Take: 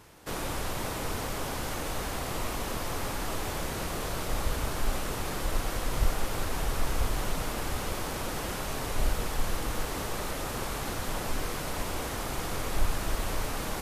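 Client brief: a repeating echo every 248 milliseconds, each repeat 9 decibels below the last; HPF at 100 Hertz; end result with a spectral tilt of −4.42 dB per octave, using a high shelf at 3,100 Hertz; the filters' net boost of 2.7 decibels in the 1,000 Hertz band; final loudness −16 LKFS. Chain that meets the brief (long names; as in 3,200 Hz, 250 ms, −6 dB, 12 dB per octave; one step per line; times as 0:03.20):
high-pass filter 100 Hz
parametric band 1,000 Hz +4 dB
high-shelf EQ 3,100 Hz −5 dB
repeating echo 248 ms, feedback 35%, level −9 dB
level +18 dB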